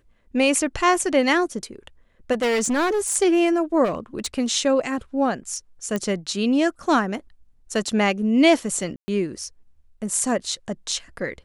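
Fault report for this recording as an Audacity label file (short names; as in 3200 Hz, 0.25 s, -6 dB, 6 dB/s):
2.320000	3.160000	clipped -18.5 dBFS
3.840000	4.260000	clipped -20 dBFS
5.960000	5.960000	pop -12 dBFS
8.960000	9.080000	gap 0.12 s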